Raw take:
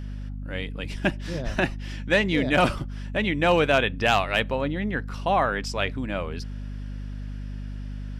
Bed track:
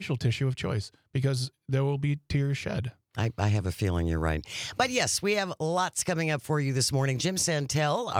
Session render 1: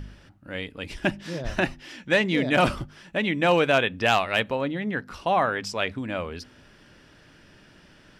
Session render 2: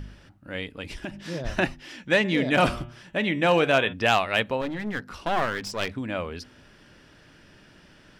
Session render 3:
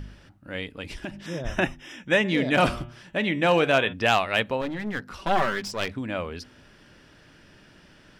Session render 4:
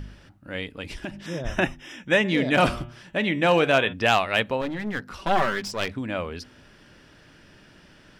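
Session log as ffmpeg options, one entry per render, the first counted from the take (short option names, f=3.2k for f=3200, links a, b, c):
-af "bandreject=f=50:t=h:w=4,bandreject=f=100:t=h:w=4,bandreject=f=150:t=h:w=4,bandreject=f=200:t=h:w=4,bandreject=f=250:t=h:w=4"
-filter_complex "[0:a]asettb=1/sr,asplit=3[a][b][c];[a]atrim=end=0.804[d];[b]atrim=start=0.8:end=1.3,asetpts=PTS-STARTPTS,afade=t=in:d=0.004:c=qsin,afade=t=out:st=0.496:d=0.004:c=qsin,acompressor=threshold=-29dB:ratio=12:attack=3.2:release=140:knee=1:detection=peak[e];[c]atrim=start=1.296[f];[d][e]acrossfade=d=0.004:c1=hsin:c2=qsin[g];[g][f]acrossfade=d=0.004:c1=qsin:c2=hsin,asplit=3[h][i][j];[h]afade=t=out:st=2.23:d=0.02[k];[i]bandreject=f=118.8:t=h:w=4,bandreject=f=237.6:t=h:w=4,bandreject=f=356.4:t=h:w=4,bandreject=f=475.2:t=h:w=4,bandreject=f=594:t=h:w=4,bandreject=f=712.8:t=h:w=4,bandreject=f=831.6:t=h:w=4,bandreject=f=950.4:t=h:w=4,bandreject=f=1.0692k:t=h:w=4,bandreject=f=1.188k:t=h:w=4,bandreject=f=1.3068k:t=h:w=4,bandreject=f=1.4256k:t=h:w=4,bandreject=f=1.5444k:t=h:w=4,bandreject=f=1.6632k:t=h:w=4,bandreject=f=1.782k:t=h:w=4,bandreject=f=1.9008k:t=h:w=4,bandreject=f=2.0196k:t=h:w=4,bandreject=f=2.1384k:t=h:w=4,bandreject=f=2.2572k:t=h:w=4,bandreject=f=2.376k:t=h:w=4,bandreject=f=2.4948k:t=h:w=4,bandreject=f=2.6136k:t=h:w=4,bandreject=f=2.7324k:t=h:w=4,bandreject=f=2.8512k:t=h:w=4,bandreject=f=2.97k:t=h:w=4,bandreject=f=3.0888k:t=h:w=4,bandreject=f=3.2076k:t=h:w=4,bandreject=f=3.3264k:t=h:w=4,bandreject=f=3.4452k:t=h:w=4,bandreject=f=3.564k:t=h:w=4,bandreject=f=3.6828k:t=h:w=4,bandreject=f=3.8016k:t=h:w=4,afade=t=in:st=2.23:d=0.02,afade=t=out:st=3.92:d=0.02[l];[j]afade=t=in:st=3.92:d=0.02[m];[k][l][m]amix=inputs=3:normalize=0,asettb=1/sr,asplit=3[n][o][p];[n]atrim=end=4.614[q];[o]atrim=start=4.61:end=5.97,asetpts=PTS-STARTPTS,afade=t=in:d=0.004:c=qsin,afade=t=out:st=1.356:d=0.004:c=qsin,aeval=exprs='clip(val(0),-1,0.0237)':c=same[r];[p]atrim=start=5.966[s];[q][r]acrossfade=d=0.004:c1=hsin:c2=qsin[t];[t][s]acrossfade=d=0.004:c1=qsin:c2=hsin"
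-filter_complex "[0:a]asettb=1/sr,asplit=3[a][b][c];[a]atrim=end=1.264[d];[b]atrim=start=1.26:end=2.28,asetpts=PTS-STARTPTS,afade=t=in:d=0.004:c=qsin,afade=t=out:st=1.016:d=0.004:c=qsin,asuperstop=centerf=4400:order=20:qfactor=3.7[e];[c]atrim=start=2.276[f];[d][e]acrossfade=d=0.004:c1=hsin:c2=qsin[g];[g][f]acrossfade=d=0.004:c1=qsin:c2=hsin,asettb=1/sr,asplit=3[h][i][j];[h]atrim=end=5.184[k];[i]atrim=start=5.18:end=5.67,asetpts=PTS-STARTPTS,afade=t=in:d=0.004:c=qsin,afade=t=out:st=0.486:d=0.004:c=qsin,aecho=1:1:5.2:0.62,atrim=end_sample=21609[l];[j]atrim=start=5.666[m];[k][l]acrossfade=d=0.004:c1=hsin:c2=qsin[n];[n][m]acrossfade=d=0.004:c1=qsin:c2=hsin"
-af "volume=1dB"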